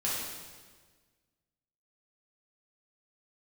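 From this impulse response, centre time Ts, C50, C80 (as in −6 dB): 93 ms, −1.5 dB, 1.5 dB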